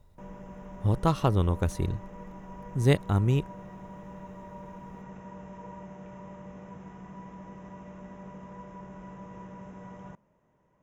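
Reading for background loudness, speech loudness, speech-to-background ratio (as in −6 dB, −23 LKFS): −45.0 LKFS, −27.5 LKFS, 17.5 dB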